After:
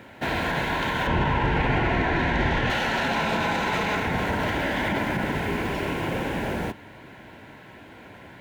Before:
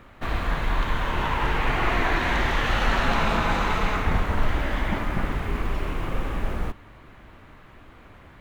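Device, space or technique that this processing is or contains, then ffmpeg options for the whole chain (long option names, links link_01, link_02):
PA system with an anti-feedback notch: -filter_complex "[0:a]highpass=130,asuperstop=centerf=1200:order=4:qfactor=4.3,alimiter=limit=-22.5dB:level=0:latency=1:release=37,asettb=1/sr,asplit=3[link_01][link_02][link_03];[link_01]atrim=end=1.074[link_04];[link_02]atrim=start=1.07:end=2.7,asetpts=PTS-STARTPTS,afade=type=in:duration=0.004:curve=qsin,afade=type=out:start_time=1.626:duration=0.004:curve=qsin,aemphasis=mode=reproduction:type=bsi[link_05];[link_03]atrim=start=2.696[link_06];[link_04][link_05]acrossfade=duration=0.004:curve1=hsin:curve2=qsin[link_07];[link_07][link_06]acrossfade=duration=0.004:curve1=qsin:curve2=hsin,volume=6dB"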